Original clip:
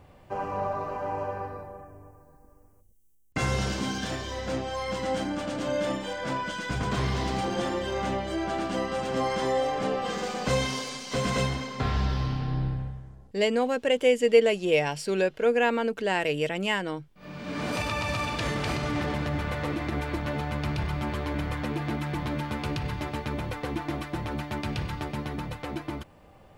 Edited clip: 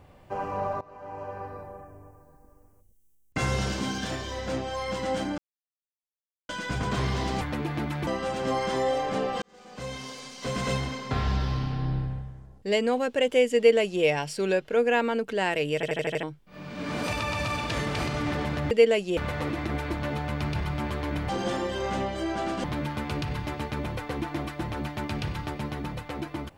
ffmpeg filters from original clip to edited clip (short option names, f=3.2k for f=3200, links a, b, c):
-filter_complex "[0:a]asplit=17[a][b][c][d][e][f][g][h][i][j][k][l][m][n][o][p][q];[a]atrim=end=0.81,asetpts=PTS-STARTPTS,afade=t=out:st=0.806:d=0.004:c=hsin:silence=0.0891251[r];[b]atrim=start=0.81:end=5.38,asetpts=PTS-STARTPTS,afade=t=in:d=0.89:silence=0.0891251,afade=t=out:st=4.566:d=0.004:c=hsin[s];[c]atrim=start=5.38:end=6.49,asetpts=PTS-STARTPTS,volume=0[t];[d]atrim=start=6.49:end=7.412,asetpts=PTS-STARTPTS,afade=t=in:d=0.004:c=hsin[u];[e]atrim=start=21.518:end=22.182[v];[f]atrim=start=8.758:end=10.11,asetpts=PTS-STARTPTS,afade=t=out:st=1.348:d=0.004:c=hsin[w];[g]atrim=start=10.11:end=16.522,asetpts=PTS-STARTPTS,afade=t=in:d=1.55[x];[h]atrim=start=16.438:end=16.522[y];[i]atrim=start=16.438:end=16.522[z];[j]atrim=start=16.438:end=16.522[aa];[k]atrim=start=16.438:end=16.522[ab];[l]atrim=start=16.438:end=16.522[ac];[m]atrim=start=16.918:end=19.402[ad];[n]atrim=start=14.258:end=14.722[ae];[o]atrim=start=19.398:end=21.522[af];[p]atrim=start=7.408:end=8.762[ag];[q]atrim=start=22.178[ah];[r][s][t][u]concat=n=4:v=0:a=1[ai];[ai][v]acrossfade=d=0.004:c1=hsin:c2=hsin[aj];[w][x]concat=n=2:v=0:a=1[ak];[aj][ak]acrossfade=d=0.004:c1=hsin:c2=hsin[al];[al][y]acrossfade=d=0.004:c1=hsin:c2=hsin[am];[am][z]acrossfade=d=0.004:c1=hsin:c2=hsin[an];[an][aa]acrossfade=d=0.004:c1=hsin:c2=hsin[ao];[ao][ab]acrossfade=d=0.004:c1=hsin:c2=hsin[ap];[ap][ac]acrossfade=d=0.004:c1=hsin:c2=hsin[aq];[aq][ad]acrossfade=d=0.004:c1=hsin:c2=hsin[ar];[ar][ae]acrossfade=d=0.004:c1=hsin:c2=hsin[as];[as][af]acrossfade=d=0.004:c1=hsin:c2=hsin[at];[at][ag]acrossfade=d=0.004:c1=hsin:c2=hsin[au];[au][ah]acrossfade=d=0.004:c1=hsin:c2=hsin"